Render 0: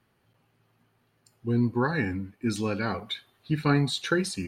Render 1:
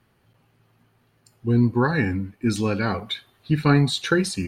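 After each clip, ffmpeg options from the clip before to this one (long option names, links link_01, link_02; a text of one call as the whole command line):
ffmpeg -i in.wav -af "lowshelf=frequency=110:gain=5.5,volume=4.5dB" out.wav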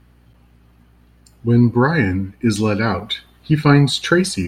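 ffmpeg -i in.wav -af "aeval=exprs='val(0)+0.00158*(sin(2*PI*60*n/s)+sin(2*PI*2*60*n/s)/2+sin(2*PI*3*60*n/s)/3+sin(2*PI*4*60*n/s)/4+sin(2*PI*5*60*n/s)/5)':channel_layout=same,volume=5.5dB" out.wav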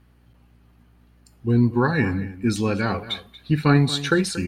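ffmpeg -i in.wav -filter_complex "[0:a]asplit=2[link_01][link_02];[link_02]adelay=233.2,volume=-15dB,highshelf=frequency=4000:gain=-5.25[link_03];[link_01][link_03]amix=inputs=2:normalize=0,volume=-5dB" out.wav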